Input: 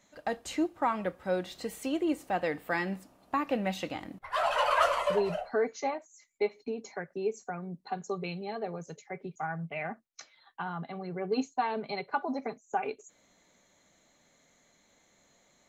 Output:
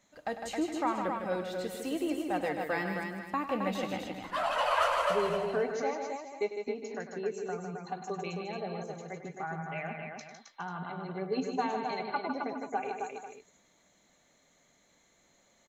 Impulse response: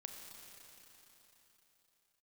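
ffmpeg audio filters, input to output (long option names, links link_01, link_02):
-af "aecho=1:1:99|155|266|412|491:0.251|0.473|0.562|0.211|0.188,volume=-3dB"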